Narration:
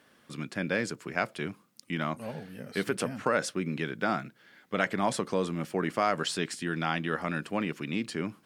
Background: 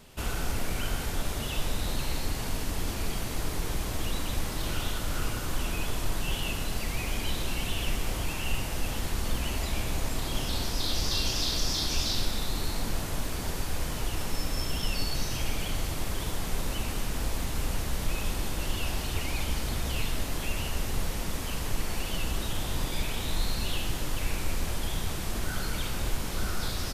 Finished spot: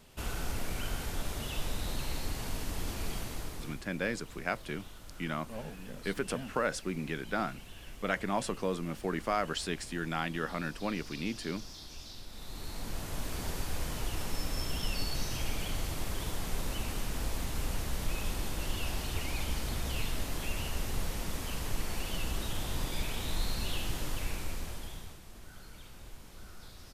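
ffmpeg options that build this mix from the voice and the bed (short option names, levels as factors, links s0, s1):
-filter_complex "[0:a]adelay=3300,volume=0.631[s0];[1:a]volume=2.99,afade=t=out:st=3.16:d=0.68:silence=0.211349,afade=t=in:st=12.27:d=1.12:silence=0.188365,afade=t=out:st=24.07:d=1.14:silence=0.177828[s1];[s0][s1]amix=inputs=2:normalize=0"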